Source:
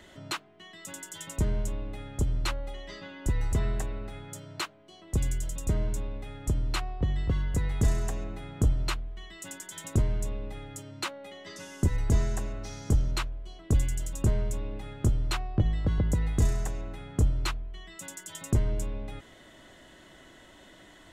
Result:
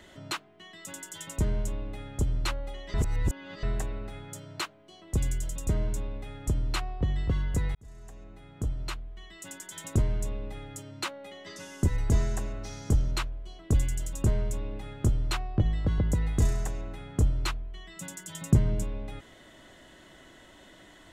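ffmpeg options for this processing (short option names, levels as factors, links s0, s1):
-filter_complex "[0:a]asettb=1/sr,asplit=3[s0][s1][s2];[s0]atrim=end=17.964[s3];[s1]atrim=start=17.96:end=18.84,asetpts=PTS-STARTPTS,afade=t=in:d=0.004:c=qsin,afade=t=out:st=0.876:d=0.004:c=qsin,equalizer=f=160:t=o:w=0.77:g=11.5[s4];[s2]atrim=start=18.836[s5];[s3][s4]acrossfade=d=0.004:c1=hsin:c2=qsin[s6];[s6][s5]acrossfade=d=0.004:c1=qsin:c2=hsin,asplit=4[s7][s8][s9][s10];[s7]atrim=end=2.942[s11];[s8]atrim=start=2.938:end=3.632,asetpts=PTS-STARTPTS,areverse[s12];[s9]atrim=start=3.628:end=7.75,asetpts=PTS-STARTPTS,afade=t=out:st=4.118:d=0.004:c=hsin[s13];[s10]atrim=start=7.75,asetpts=PTS-STARTPTS,afade=t=in:d=2.06[s14];[s11][s12]acrossfade=d=0.004:c1=hsin:c2=hsin[s15];[s13][s14]concat=n=2:v=0:a=1[s16];[s15][s16]acrossfade=d=0.004:c1=hsin:c2=hsin"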